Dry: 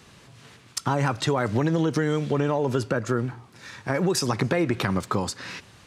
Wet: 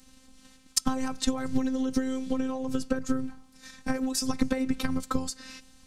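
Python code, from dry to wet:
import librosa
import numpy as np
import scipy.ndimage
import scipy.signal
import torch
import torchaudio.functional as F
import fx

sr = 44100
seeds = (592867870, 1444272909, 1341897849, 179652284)

y = fx.transient(x, sr, attack_db=8, sustain_db=1)
y = fx.robotise(y, sr, hz=261.0)
y = fx.bass_treble(y, sr, bass_db=15, treble_db=11)
y = F.gain(torch.from_numpy(y), -10.0).numpy()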